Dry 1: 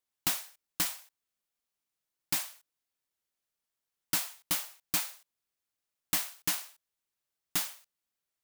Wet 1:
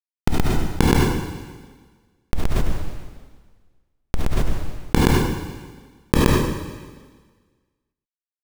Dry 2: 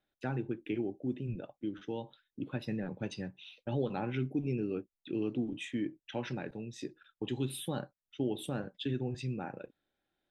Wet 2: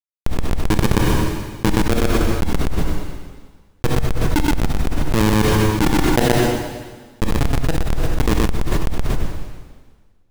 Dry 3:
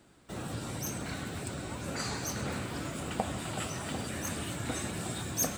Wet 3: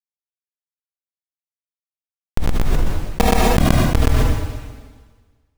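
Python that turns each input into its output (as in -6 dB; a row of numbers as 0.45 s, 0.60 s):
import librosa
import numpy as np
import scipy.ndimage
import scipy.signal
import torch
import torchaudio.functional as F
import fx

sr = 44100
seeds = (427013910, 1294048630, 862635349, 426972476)

p1 = fx.fade_out_tail(x, sr, length_s=1.7)
p2 = fx.tilt_eq(p1, sr, slope=-4.0)
p3 = p2 + 0.89 * np.pad(p2, (int(6.3 * sr / 1000.0), 0))[:len(p2)]
p4 = fx.rider(p3, sr, range_db=3, speed_s=2.0)
p5 = p3 + F.gain(torch.from_numpy(p4), -1.5).numpy()
p6 = fx.bandpass_q(p5, sr, hz=650.0, q=0.74)
p7 = fx.quant_dither(p6, sr, seeds[0], bits=8, dither='triangular')
p8 = fx.schmitt(p7, sr, flips_db=-17.5)
p9 = p8 + fx.echo_single(p8, sr, ms=123, db=-8.5, dry=0)
p10 = fx.rev_double_slope(p9, sr, seeds[1], early_s=0.43, late_s=1.5, knee_db=-16, drr_db=13.0)
p11 = fx.env_flatten(p10, sr, amount_pct=100)
y = librosa.util.normalize(p11) * 10.0 ** (-1.5 / 20.0)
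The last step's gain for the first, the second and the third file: +24.0 dB, +11.5 dB, +15.5 dB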